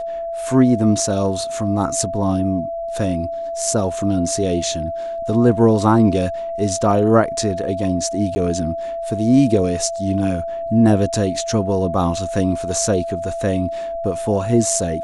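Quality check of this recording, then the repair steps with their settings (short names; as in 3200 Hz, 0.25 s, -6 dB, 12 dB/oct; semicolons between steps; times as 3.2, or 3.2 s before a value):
tone 670 Hz -23 dBFS
8.35–8.36 gap 10 ms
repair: notch 670 Hz, Q 30; interpolate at 8.35, 10 ms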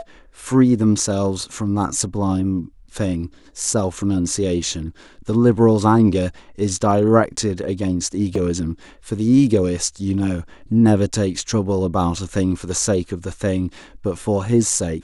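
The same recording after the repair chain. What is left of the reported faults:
none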